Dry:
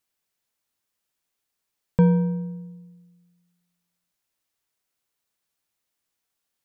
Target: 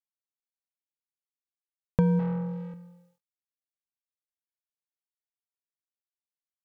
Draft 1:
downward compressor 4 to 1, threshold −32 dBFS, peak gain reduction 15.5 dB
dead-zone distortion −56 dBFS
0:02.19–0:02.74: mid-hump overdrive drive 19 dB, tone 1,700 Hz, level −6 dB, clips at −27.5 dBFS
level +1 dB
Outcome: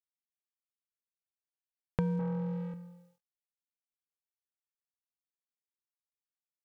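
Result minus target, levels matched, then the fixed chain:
downward compressor: peak gain reduction +8.5 dB
downward compressor 4 to 1, threshold −21 dBFS, peak gain reduction 7.5 dB
dead-zone distortion −56 dBFS
0:02.19–0:02.74: mid-hump overdrive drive 19 dB, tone 1,700 Hz, level −6 dB, clips at −27.5 dBFS
level +1 dB

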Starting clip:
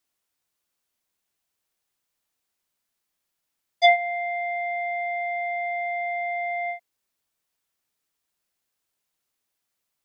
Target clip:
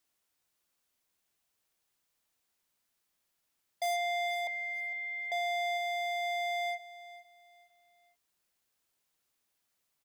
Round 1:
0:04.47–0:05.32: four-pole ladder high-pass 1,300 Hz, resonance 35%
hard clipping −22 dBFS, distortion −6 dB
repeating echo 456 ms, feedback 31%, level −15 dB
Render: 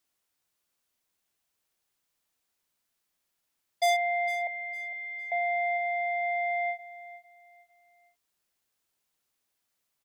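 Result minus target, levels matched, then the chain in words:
hard clipping: distortion −4 dB
0:04.47–0:05.32: four-pole ladder high-pass 1,300 Hz, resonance 35%
hard clipping −30.5 dBFS, distortion −2 dB
repeating echo 456 ms, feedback 31%, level −15 dB

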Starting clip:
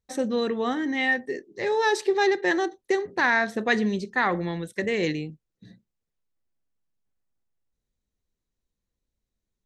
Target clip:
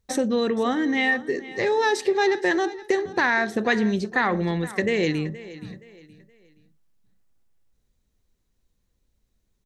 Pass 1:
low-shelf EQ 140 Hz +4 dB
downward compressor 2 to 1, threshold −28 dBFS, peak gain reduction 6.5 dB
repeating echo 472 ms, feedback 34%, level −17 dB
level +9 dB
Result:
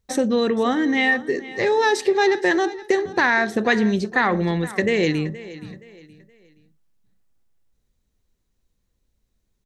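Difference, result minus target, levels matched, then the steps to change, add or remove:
downward compressor: peak gain reduction −3 dB
change: downward compressor 2 to 1, threshold −34 dBFS, peak gain reduction 9.5 dB

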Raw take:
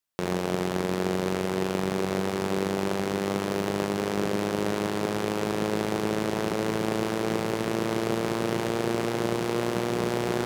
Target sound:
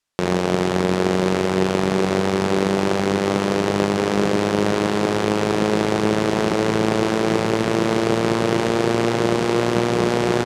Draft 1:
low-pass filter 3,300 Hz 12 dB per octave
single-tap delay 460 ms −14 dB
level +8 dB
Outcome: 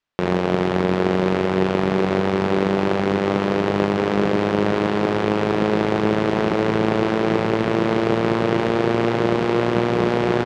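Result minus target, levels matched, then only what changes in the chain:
8,000 Hz band −12.0 dB
change: low-pass filter 8,400 Hz 12 dB per octave

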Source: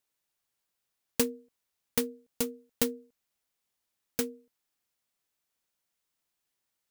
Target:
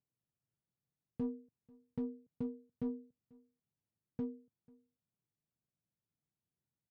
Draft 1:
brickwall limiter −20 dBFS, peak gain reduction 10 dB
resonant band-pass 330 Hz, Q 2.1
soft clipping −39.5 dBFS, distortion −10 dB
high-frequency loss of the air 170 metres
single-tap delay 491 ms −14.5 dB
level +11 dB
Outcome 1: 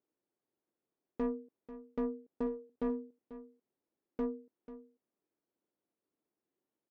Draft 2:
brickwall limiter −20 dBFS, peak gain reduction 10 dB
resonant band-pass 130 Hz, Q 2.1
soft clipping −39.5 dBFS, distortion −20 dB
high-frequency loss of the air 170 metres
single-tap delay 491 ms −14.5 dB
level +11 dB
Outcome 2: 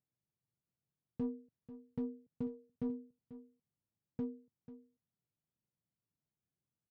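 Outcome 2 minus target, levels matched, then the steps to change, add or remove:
echo-to-direct +11 dB
change: single-tap delay 491 ms −25.5 dB

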